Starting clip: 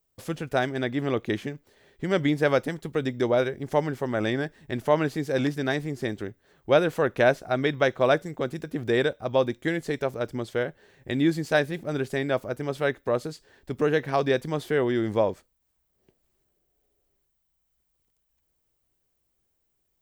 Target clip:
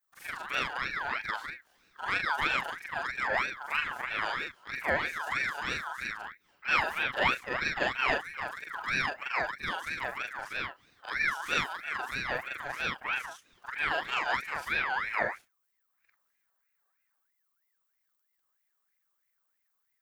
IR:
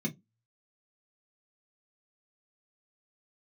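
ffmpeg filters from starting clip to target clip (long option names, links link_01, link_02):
-af "afftfilt=real='re':imag='-im':win_size=4096:overlap=0.75,highshelf=frequency=7200:gain=4.5,aeval=exprs='val(0)*sin(2*PI*1600*n/s+1600*0.3/3.1*sin(2*PI*3.1*n/s))':channel_layout=same"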